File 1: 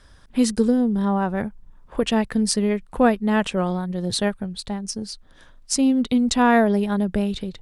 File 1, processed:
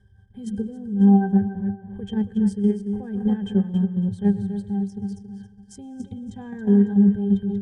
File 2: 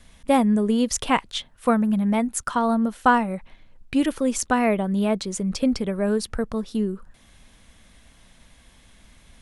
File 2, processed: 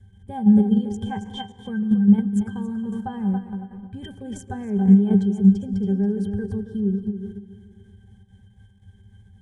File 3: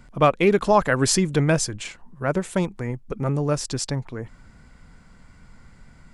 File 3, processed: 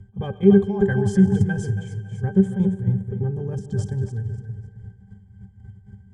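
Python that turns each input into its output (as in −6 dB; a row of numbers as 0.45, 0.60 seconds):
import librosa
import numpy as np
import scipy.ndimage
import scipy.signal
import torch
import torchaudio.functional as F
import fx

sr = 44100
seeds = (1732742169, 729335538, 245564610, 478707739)

p1 = x + fx.echo_feedback(x, sr, ms=276, feedback_pct=29, wet_db=-9.5, dry=0)
p2 = fx.rev_plate(p1, sr, seeds[0], rt60_s=2.1, hf_ratio=0.7, predelay_ms=90, drr_db=14.0)
p3 = p2 * (1.0 - 0.51 / 2.0 + 0.51 / 2.0 * np.cos(2.0 * np.pi * 3.7 * (np.arange(len(p2)) / sr)))
p4 = fx.over_compress(p3, sr, threshold_db=-20.0, ratio=-0.5)
p5 = p3 + (p4 * librosa.db_to_amplitude(-0.5))
p6 = fx.graphic_eq(p5, sr, hz=(125, 250, 500, 1000, 2000, 4000, 8000), db=(10, -8, -4, -9, -4, -10, 7))
p7 = fx.level_steps(p6, sr, step_db=10)
p8 = fx.high_shelf(p7, sr, hz=5700.0, db=5.5)
p9 = fx.octave_resonator(p8, sr, note='G', decay_s=0.14)
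y = p9 * 10.0 ** (-22 / 20.0) / np.sqrt(np.mean(np.square(p9)))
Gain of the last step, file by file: +9.0, +13.5, +13.5 decibels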